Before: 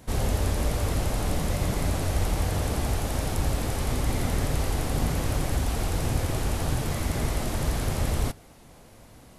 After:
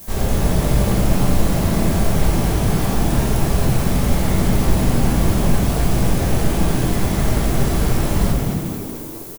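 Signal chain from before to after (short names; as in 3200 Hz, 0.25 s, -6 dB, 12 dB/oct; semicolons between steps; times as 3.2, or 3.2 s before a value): added noise violet -42 dBFS; frequency-shifting echo 0.223 s, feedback 55%, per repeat +72 Hz, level -5 dB; shoebox room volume 190 m³, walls mixed, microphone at 1.2 m; gain +1.5 dB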